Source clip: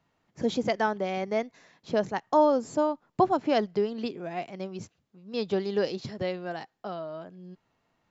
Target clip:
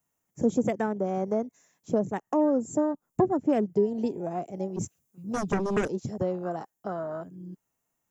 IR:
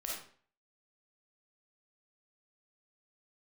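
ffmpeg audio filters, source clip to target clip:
-filter_complex "[0:a]afwtdn=0.0158,asplit=3[link_01][link_02][link_03];[link_01]afade=type=out:start_time=4.76:duration=0.02[link_04];[link_02]aeval=exprs='0.15*(cos(1*acos(clip(val(0)/0.15,-1,1)))-cos(1*PI/2))+0.0422*(cos(3*acos(clip(val(0)/0.15,-1,1)))-cos(3*PI/2))+0.0473*(cos(7*acos(clip(val(0)/0.15,-1,1)))-cos(7*PI/2))':channel_layout=same,afade=type=in:start_time=4.76:duration=0.02,afade=type=out:start_time=5.87:duration=0.02[link_05];[link_03]afade=type=in:start_time=5.87:duration=0.02[link_06];[link_04][link_05][link_06]amix=inputs=3:normalize=0,acrossover=split=450[link_07][link_08];[link_08]acompressor=threshold=-36dB:ratio=8[link_09];[link_07][link_09]amix=inputs=2:normalize=0,aexciter=amount=10.6:drive=8.1:freq=6500,volume=4.5dB"

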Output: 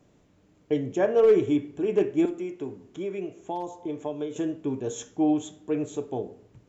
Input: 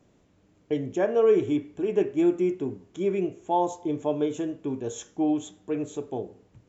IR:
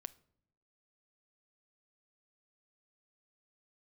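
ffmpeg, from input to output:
-filter_complex "[0:a]asoftclip=type=hard:threshold=-14dB,asettb=1/sr,asplit=3[link_01][link_02][link_03];[link_01]atrim=end=2.254[link_04];[link_02]atrim=start=2.25:end=4.36,asetpts=PTS-STARTPTS,afade=type=in:duration=0.004:curve=qsin,afade=type=out:start_time=2.106:duration=0.004:curve=qsin,acrossover=split=390|3300[link_05][link_06][link_07];[link_05]acompressor=threshold=-39dB:ratio=4[link_08];[link_06]acompressor=threshold=-34dB:ratio=4[link_09];[link_07]acompressor=threshold=-59dB:ratio=4[link_10];[link_08][link_09][link_10]amix=inputs=3:normalize=0[link_11];[link_03]atrim=start=4.356[link_12];[link_04][link_11]acrossfade=duration=0.004:curve1=hsin:curve2=qsin[link_13];[link_13][link_12]acrossfade=duration=0.004:curve1=qsin:curve2=hsin[link_14];[1:a]atrim=start_sample=2205[link_15];[link_14][link_15]afir=irnorm=-1:irlink=0,volume=5.5dB"

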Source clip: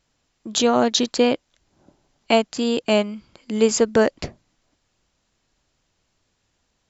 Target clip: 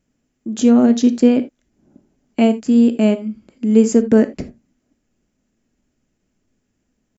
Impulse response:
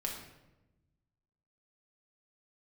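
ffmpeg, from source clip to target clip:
-filter_complex "[0:a]equalizer=frequency=250:width_type=o:width=1:gain=11,equalizer=frequency=1000:width_type=o:width=1:gain=-8,equalizer=frequency=4000:width_type=o:width=1:gain=-12,atempo=0.96,asplit=2[link_01][link_02];[1:a]atrim=start_sample=2205,atrim=end_sample=3969[link_03];[link_02][link_03]afir=irnorm=-1:irlink=0,volume=-4dB[link_04];[link_01][link_04]amix=inputs=2:normalize=0,volume=-4.5dB"

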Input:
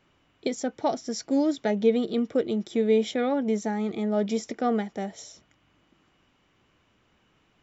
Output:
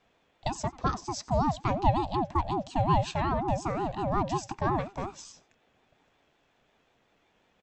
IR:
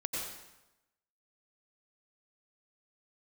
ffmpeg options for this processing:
-af "aecho=1:1:90:0.0841,aeval=exprs='val(0)*sin(2*PI*470*n/s+470*0.3/5.5*sin(2*PI*5.5*n/s))':channel_layout=same"

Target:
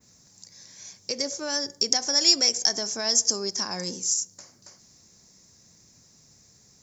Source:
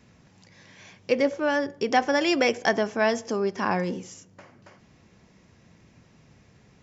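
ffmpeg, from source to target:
ffmpeg -i in.wav -af "alimiter=limit=-16.5dB:level=0:latency=1:release=114,aexciter=amount=11.9:drive=5.8:freq=4400,adynamicequalizer=threshold=0.02:dfrequency=5800:dqfactor=0.76:tfrequency=5800:tqfactor=0.76:attack=5:release=100:ratio=0.375:range=3.5:mode=boostabove:tftype=bell,volume=-7dB" out.wav

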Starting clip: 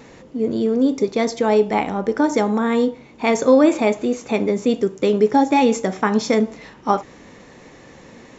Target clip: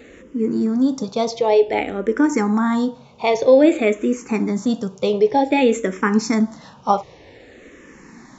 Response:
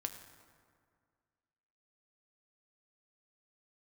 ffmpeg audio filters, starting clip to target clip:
-filter_complex "[0:a]asplit=2[link_01][link_02];[link_02]afreqshift=-0.53[link_03];[link_01][link_03]amix=inputs=2:normalize=1,volume=2.5dB"

